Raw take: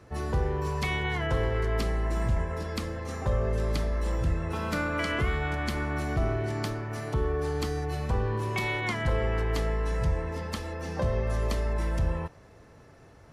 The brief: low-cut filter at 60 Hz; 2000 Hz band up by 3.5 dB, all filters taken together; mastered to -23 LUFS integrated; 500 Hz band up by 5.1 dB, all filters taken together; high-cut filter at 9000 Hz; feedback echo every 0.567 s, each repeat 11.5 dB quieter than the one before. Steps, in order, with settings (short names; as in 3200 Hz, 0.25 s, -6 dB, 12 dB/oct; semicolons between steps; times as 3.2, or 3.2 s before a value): HPF 60 Hz; LPF 9000 Hz; bell 500 Hz +6 dB; bell 2000 Hz +4 dB; feedback echo 0.567 s, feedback 27%, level -11.5 dB; gain +5 dB